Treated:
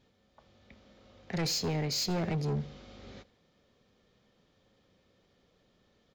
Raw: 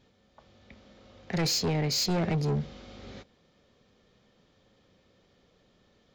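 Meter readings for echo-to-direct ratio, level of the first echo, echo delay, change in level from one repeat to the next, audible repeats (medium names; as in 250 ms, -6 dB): -22.0 dB, -23.0 dB, 83 ms, -6.0 dB, 2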